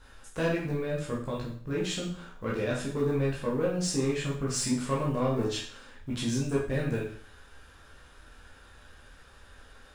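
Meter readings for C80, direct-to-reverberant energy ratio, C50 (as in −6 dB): 8.5 dB, −5.5 dB, 4.5 dB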